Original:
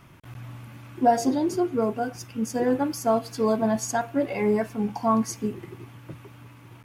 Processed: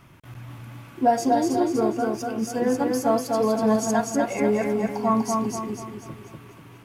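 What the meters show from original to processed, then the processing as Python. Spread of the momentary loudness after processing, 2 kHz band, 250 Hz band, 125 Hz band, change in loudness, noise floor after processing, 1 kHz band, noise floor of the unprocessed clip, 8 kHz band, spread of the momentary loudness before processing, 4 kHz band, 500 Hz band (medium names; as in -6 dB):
19 LU, +2.0 dB, +2.0 dB, +1.0 dB, +2.0 dB, -47 dBFS, +2.0 dB, -49 dBFS, +2.0 dB, 20 LU, +2.0 dB, +2.0 dB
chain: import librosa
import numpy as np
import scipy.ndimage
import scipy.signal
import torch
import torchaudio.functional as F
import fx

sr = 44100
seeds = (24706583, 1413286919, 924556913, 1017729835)

y = fx.echo_feedback(x, sr, ms=244, feedback_pct=44, wet_db=-3.0)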